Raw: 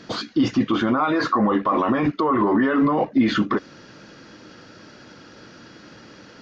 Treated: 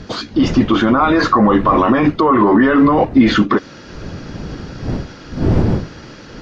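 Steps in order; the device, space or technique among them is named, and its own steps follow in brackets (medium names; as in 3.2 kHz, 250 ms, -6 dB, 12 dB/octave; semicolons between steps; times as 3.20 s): smartphone video outdoors (wind noise 230 Hz -31 dBFS; level rider gain up to 4 dB; trim +4 dB; AAC 64 kbps 32 kHz)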